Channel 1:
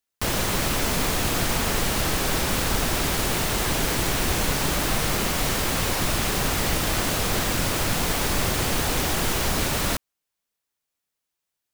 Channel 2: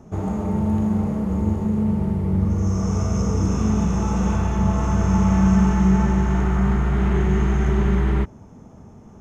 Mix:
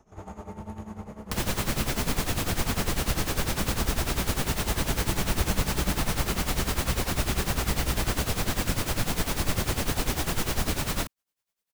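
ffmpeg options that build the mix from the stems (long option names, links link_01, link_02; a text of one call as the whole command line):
ffmpeg -i stem1.wav -i stem2.wav -filter_complex "[0:a]adelay=1100,volume=1.5dB[link_01];[1:a]equalizer=frequency=170:width=0.42:gain=-13.5,volume=-4dB[link_02];[link_01][link_02]amix=inputs=2:normalize=0,acrossover=split=250[link_03][link_04];[link_04]acompressor=threshold=-32dB:ratio=1.5[link_05];[link_03][link_05]amix=inputs=2:normalize=0,tremolo=f=10:d=0.77" out.wav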